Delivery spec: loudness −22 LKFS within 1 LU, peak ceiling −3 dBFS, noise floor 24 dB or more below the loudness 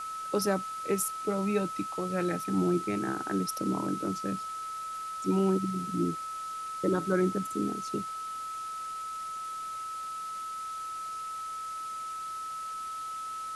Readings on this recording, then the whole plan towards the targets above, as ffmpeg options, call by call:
interfering tone 1,300 Hz; level of the tone −35 dBFS; background noise floor −38 dBFS; target noise floor −57 dBFS; integrated loudness −32.5 LKFS; sample peak −15.5 dBFS; target loudness −22.0 LKFS
→ -af "bandreject=frequency=1300:width=30"
-af "afftdn=noise_reduction=19:noise_floor=-38"
-af "volume=10.5dB"

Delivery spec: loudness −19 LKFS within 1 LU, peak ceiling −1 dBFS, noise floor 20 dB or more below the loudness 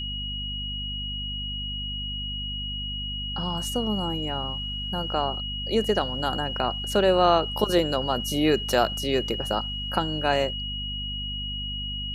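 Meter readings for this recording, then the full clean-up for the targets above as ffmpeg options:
mains hum 50 Hz; hum harmonics up to 250 Hz; level of the hum −33 dBFS; interfering tone 2,900 Hz; level of the tone −31 dBFS; integrated loudness −26.5 LKFS; sample peak −6.5 dBFS; target loudness −19.0 LKFS
→ -af "bandreject=frequency=50:width_type=h:width=6,bandreject=frequency=100:width_type=h:width=6,bandreject=frequency=150:width_type=h:width=6,bandreject=frequency=200:width_type=h:width=6,bandreject=frequency=250:width_type=h:width=6"
-af "bandreject=frequency=2900:width=30"
-af "volume=7.5dB,alimiter=limit=-1dB:level=0:latency=1"

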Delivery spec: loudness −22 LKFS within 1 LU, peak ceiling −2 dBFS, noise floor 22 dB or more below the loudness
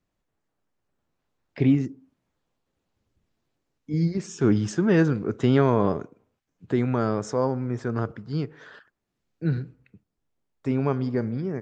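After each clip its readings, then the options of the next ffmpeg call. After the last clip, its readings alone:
integrated loudness −25.0 LKFS; sample peak −7.5 dBFS; target loudness −22.0 LKFS
→ -af "volume=3dB"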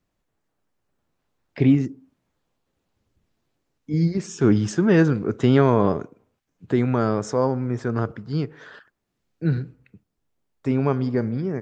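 integrated loudness −22.0 LKFS; sample peak −4.5 dBFS; background noise floor −77 dBFS

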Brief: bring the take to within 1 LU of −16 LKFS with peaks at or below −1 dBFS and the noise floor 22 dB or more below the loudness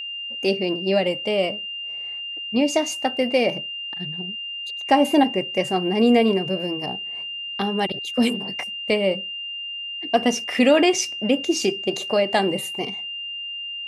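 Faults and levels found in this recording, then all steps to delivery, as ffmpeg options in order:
interfering tone 2,800 Hz; level of the tone −29 dBFS; integrated loudness −22.5 LKFS; sample peak −5.5 dBFS; target loudness −16.0 LKFS
→ -af "bandreject=frequency=2800:width=30"
-af "volume=6.5dB,alimiter=limit=-1dB:level=0:latency=1"

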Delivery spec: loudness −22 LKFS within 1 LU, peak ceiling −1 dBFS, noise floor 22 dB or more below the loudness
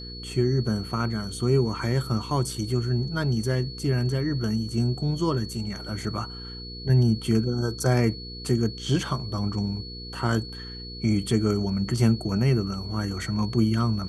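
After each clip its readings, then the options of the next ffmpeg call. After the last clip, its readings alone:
mains hum 60 Hz; hum harmonics up to 480 Hz; level of the hum −39 dBFS; interfering tone 4,400 Hz; level of the tone −39 dBFS; integrated loudness −26.0 LKFS; sample peak −9.0 dBFS; target loudness −22.0 LKFS
→ -af "bandreject=frequency=60:width_type=h:width=4,bandreject=frequency=120:width_type=h:width=4,bandreject=frequency=180:width_type=h:width=4,bandreject=frequency=240:width_type=h:width=4,bandreject=frequency=300:width_type=h:width=4,bandreject=frequency=360:width_type=h:width=4,bandreject=frequency=420:width_type=h:width=4,bandreject=frequency=480:width_type=h:width=4"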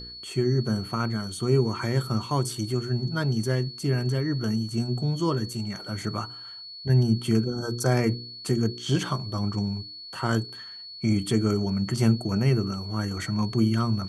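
mains hum none found; interfering tone 4,400 Hz; level of the tone −39 dBFS
→ -af "bandreject=frequency=4400:width=30"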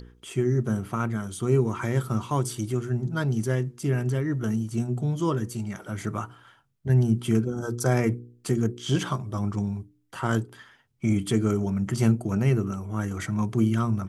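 interfering tone none found; integrated loudness −26.5 LKFS; sample peak −9.5 dBFS; target loudness −22.0 LKFS
→ -af "volume=4.5dB"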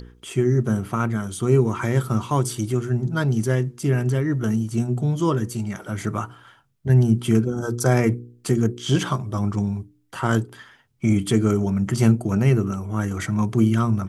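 integrated loudness −22.0 LKFS; sample peak −5.0 dBFS; background noise floor −58 dBFS

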